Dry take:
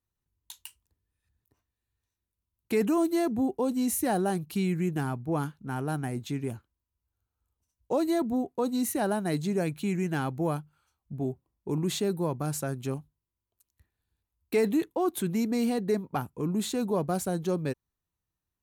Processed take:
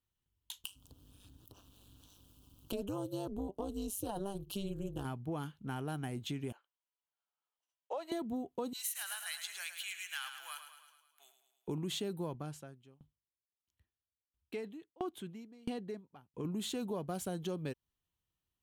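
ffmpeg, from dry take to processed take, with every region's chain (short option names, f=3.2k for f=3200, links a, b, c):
-filter_complex "[0:a]asettb=1/sr,asplit=3[a][b][c];[a]atrim=end=0.644[d];[b]atrim=start=0.64:end=5.05,asetpts=PTS-STARTPTS,afade=t=in:d=0.004:c=qsin,afade=t=out:st=4.406:d=0.004:c=qsin,acompressor=mode=upward:threshold=-30dB:ratio=2.5:attack=3.2:release=140:knee=2.83:detection=peak,asuperstop=centerf=2000:order=4:qfactor=1.4,tremolo=f=200:d=0.947[e];[c]atrim=start=5.046[f];[d][e]acrossfade=d=0.004:c1=hsin:c2=qsin[g];[g][f]acrossfade=d=0.004:c1=qsin:c2=hsin,asettb=1/sr,asplit=3[h][i][j];[h]atrim=end=6.524[k];[i]atrim=start=6.52:end=8.12,asetpts=PTS-STARTPTS,afade=t=in:d=0.004:c=qsin,afade=t=out:st=1.596:d=0.004:c=qsin,highpass=f=570:w=0.5412,highpass=f=570:w=1.3066,aemphasis=mode=reproduction:type=75kf[l];[j]atrim=start=8.116[m];[k][l]acrossfade=d=0.004:c1=hsin:c2=qsin[n];[n][m]acrossfade=d=0.004:c1=qsin:c2=hsin,asettb=1/sr,asplit=3[o][p][q];[o]atrim=end=8.734[r];[p]atrim=start=8.73:end=11.68,asetpts=PTS-STARTPTS,afade=t=in:d=0.004:c=qsin,afade=t=out:st=2.946:d=0.004:c=qsin,highpass=f=1.4k:w=0.5412,highpass=f=1.4k:w=1.3066,highshelf=f=6.2k:g=6,aecho=1:1:107|214|321|428|535|642|749:0.355|0.206|0.119|0.0692|0.0402|0.0233|0.0135,atrim=end_sample=130095[s];[q]atrim=start=11.676[t];[r][s]acrossfade=d=0.004:c1=hsin:c2=qsin[u];[u][t]acrossfade=d=0.004:c1=qsin:c2=hsin,asettb=1/sr,asplit=3[v][w][x];[v]atrim=end=12.344[y];[w]atrim=start=12.34:end=16.45,asetpts=PTS-STARTPTS,afade=t=in:d=0.004:c=qsin,afade=t=out:st=4.106:d=0.004:c=qsin,highpass=47,highshelf=f=9k:g=-12,aeval=exprs='val(0)*pow(10,-32*if(lt(mod(1.5*n/s,1),2*abs(1.5)/1000),1-mod(1.5*n/s,1)/(2*abs(1.5)/1000),(mod(1.5*n/s,1)-2*abs(1.5)/1000)/(1-2*abs(1.5)/1000))/20)':c=same[z];[x]atrim=start=16.446[aa];[y][z]acrossfade=d=0.004:c1=hsin:c2=qsin[ab];[ab][aa]acrossfade=d=0.004:c1=qsin:c2=hsin,equalizer=f=3.1k:t=o:w=0.37:g=10.5,acompressor=threshold=-33dB:ratio=4,volume=-3dB"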